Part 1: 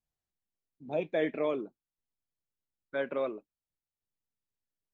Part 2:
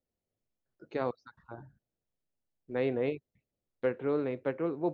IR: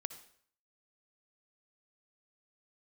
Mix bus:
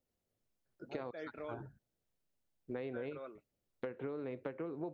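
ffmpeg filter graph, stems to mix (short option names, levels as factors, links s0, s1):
-filter_complex "[0:a]equalizer=f=1400:t=o:w=0.3:g=13.5,volume=0.188[s0];[1:a]acompressor=threshold=0.02:ratio=3,volume=1.26[s1];[s0][s1]amix=inputs=2:normalize=0,acompressor=threshold=0.0126:ratio=6"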